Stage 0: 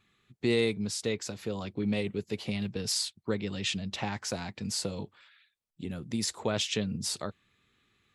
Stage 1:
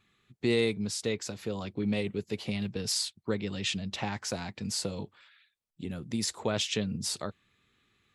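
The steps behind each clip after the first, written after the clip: nothing audible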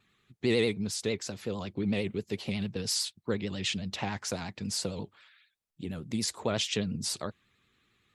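vibrato 11 Hz 94 cents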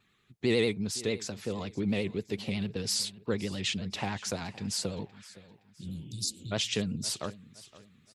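spectral repair 5.85–6.5, 210–3500 Hz before; feedback echo 0.517 s, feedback 36%, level -19 dB

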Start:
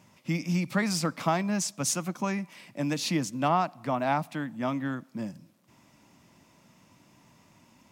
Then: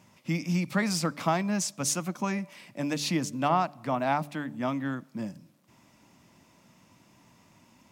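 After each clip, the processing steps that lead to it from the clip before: de-hum 145.7 Hz, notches 4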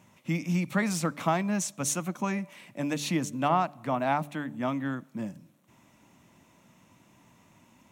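bell 4900 Hz -11 dB 0.25 oct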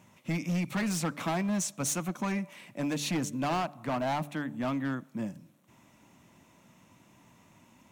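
overloaded stage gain 26.5 dB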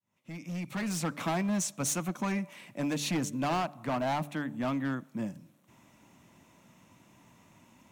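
opening faded in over 1.18 s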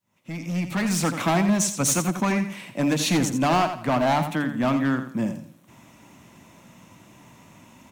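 feedback echo 85 ms, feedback 28%, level -9.5 dB; gain +9 dB

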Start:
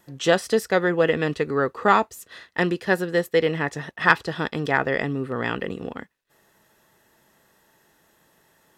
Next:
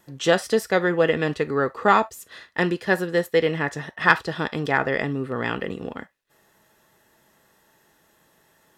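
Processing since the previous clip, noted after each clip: on a send at -11.5 dB: steep high-pass 550 Hz 96 dB/oct + reverb, pre-delay 3 ms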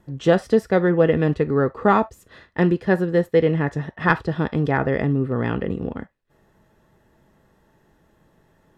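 tilt -3.5 dB/oct; gain -1 dB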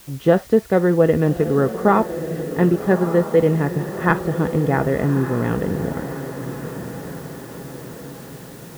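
LPF 1500 Hz 6 dB/oct; requantised 8-bit, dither triangular; on a send: diffused feedback echo 1.196 s, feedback 54%, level -10.5 dB; on the sum: gain +2 dB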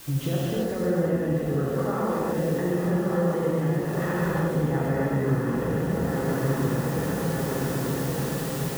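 limiter -13.5 dBFS, peak gain reduction 12 dB; compressor 6:1, threshold -30 dBFS, peak gain reduction 12 dB; non-linear reverb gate 0.4 s flat, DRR -7 dB

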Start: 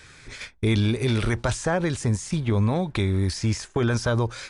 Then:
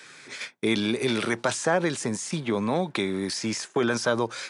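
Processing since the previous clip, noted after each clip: Bessel high-pass 250 Hz, order 8; gain +2 dB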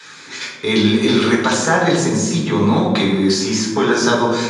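low shelf 210 Hz -11 dB; reverb RT60 1.2 s, pre-delay 3 ms, DRR -4.5 dB; gain -1.5 dB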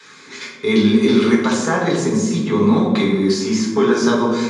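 small resonant body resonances 230/410/1100/2100 Hz, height 9 dB, ringing for 45 ms; gain -5.5 dB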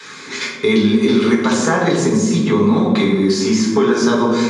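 compressor 2.5:1, threshold -22 dBFS, peak gain reduction 9.5 dB; gain +8 dB

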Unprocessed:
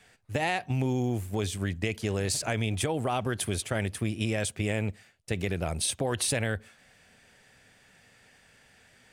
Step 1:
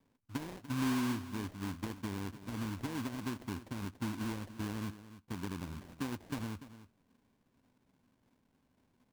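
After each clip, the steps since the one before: vocal tract filter i; sample-rate reducer 1300 Hz, jitter 20%; echo 0.292 s -14.5 dB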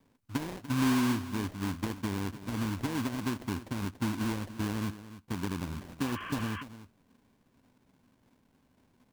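spectral repair 6.05–6.6, 1000–3300 Hz before; gain +6 dB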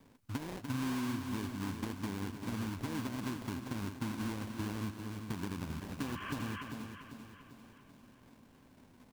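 compressor 3:1, threshold -45 dBFS, peak gain reduction 15.5 dB; on a send: feedback echo 0.395 s, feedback 50%, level -8.5 dB; on the sum: gain +5.5 dB

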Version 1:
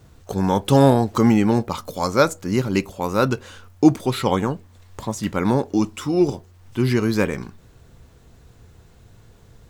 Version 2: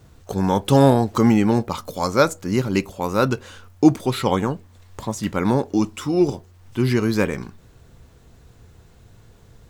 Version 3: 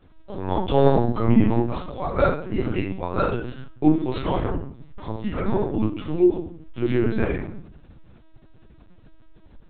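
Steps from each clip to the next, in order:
nothing audible
shoebox room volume 63 m³, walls mixed, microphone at 1.2 m; LPC vocoder at 8 kHz pitch kept; gain -9.5 dB

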